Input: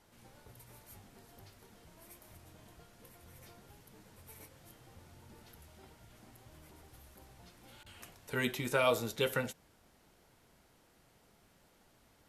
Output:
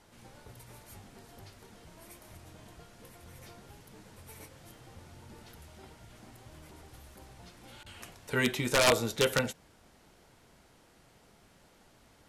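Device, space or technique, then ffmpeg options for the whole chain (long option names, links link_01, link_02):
overflowing digital effects unit: -af "aeval=exprs='(mod(11.2*val(0)+1,2)-1)/11.2':channel_layout=same,lowpass=11000,volume=5.5dB"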